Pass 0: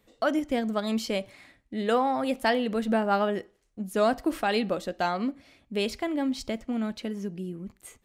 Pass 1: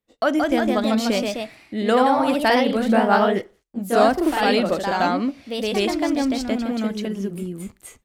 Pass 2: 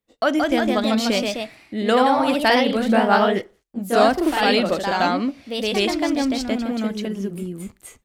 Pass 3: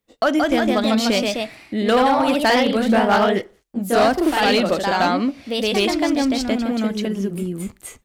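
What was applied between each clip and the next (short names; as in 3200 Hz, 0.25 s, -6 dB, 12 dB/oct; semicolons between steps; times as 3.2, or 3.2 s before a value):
gate -57 dBFS, range -25 dB; echoes that change speed 0.189 s, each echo +1 st, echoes 2; gain +5.5 dB
dynamic EQ 3500 Hz, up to +4 dB, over -34 dBFS, Q 0.71
in parallel at -1.5 dB: compressor, threshold -28 dBFS, peak gain reduction 16 dB; on the sum: hard clip -10 dBFS, distortion -18 dB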